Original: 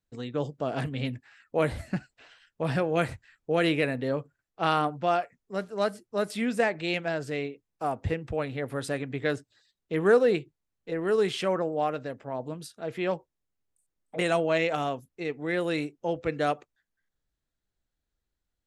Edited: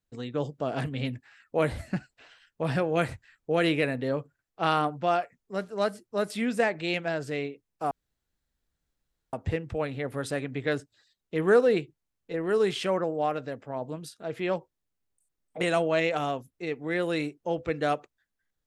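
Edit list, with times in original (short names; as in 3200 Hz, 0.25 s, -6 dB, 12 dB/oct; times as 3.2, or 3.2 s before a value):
7.91 insert room tone 1.42 s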